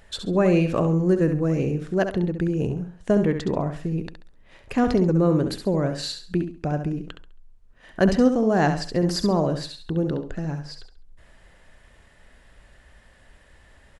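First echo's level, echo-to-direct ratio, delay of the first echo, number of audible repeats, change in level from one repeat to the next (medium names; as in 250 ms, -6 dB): -8.0 dB, -7.5 dB, 68 ms, 3, -10.5 dB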